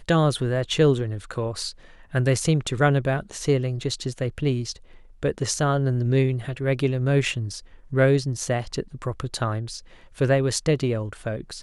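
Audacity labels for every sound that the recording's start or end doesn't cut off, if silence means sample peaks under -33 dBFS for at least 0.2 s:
2.140000	4.760000	sound
5.230000	7.600000	sound
7.920000	9.790000	sound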